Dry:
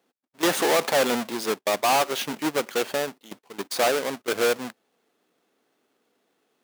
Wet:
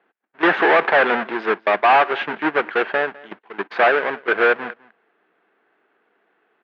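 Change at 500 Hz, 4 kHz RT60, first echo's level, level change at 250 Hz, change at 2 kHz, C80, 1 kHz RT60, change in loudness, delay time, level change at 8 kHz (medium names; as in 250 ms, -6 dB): +4.5 dB, no reverb, -22.0 dB, +3.0 dB, +11.5 dB, no reverb, no reverb, +6.0 dB, 204 ms, under -30 dB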